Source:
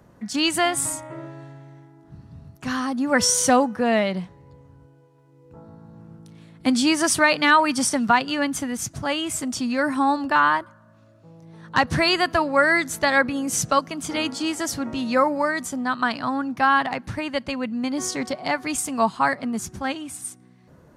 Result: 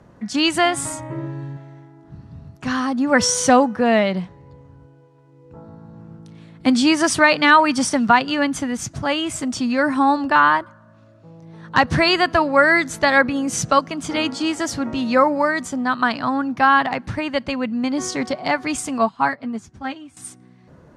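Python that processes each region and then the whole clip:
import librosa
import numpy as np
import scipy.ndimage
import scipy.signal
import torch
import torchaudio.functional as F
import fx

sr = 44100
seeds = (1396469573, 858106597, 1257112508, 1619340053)

y = fx.chain(x, sr, fx.low_shelf(hz=250.0, db=11.0),
    fx.notch_comb(f0_hz=690.0), at=(0.99, 1.57))
y = fx.chain(y, sr, fx.high_shelf(hz=9400.0, db=-11.0),
    fx.notch_comb(f0_hz=180.0),
    fx.upward_expand(threshold_db=-42.0, expansion=1.5), at=(18.98, 20.17))
y = scipy.signal.sosfilt(scipy.signal.butter(2, 9700.0, 'lowpass', fs=sr, output='sos'), y)
y = fx.high_shelf(y, sr, hz=7100.0, db=-7.5)
y = y * librosa.db_to_amplitude(4.0)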